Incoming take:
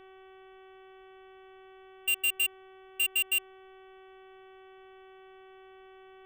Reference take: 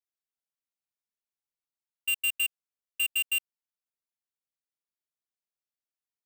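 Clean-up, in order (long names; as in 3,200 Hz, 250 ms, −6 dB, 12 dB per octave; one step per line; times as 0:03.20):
hum removal 379.7 Hz, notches 9
downward expander −45 dBFS, range −21 dB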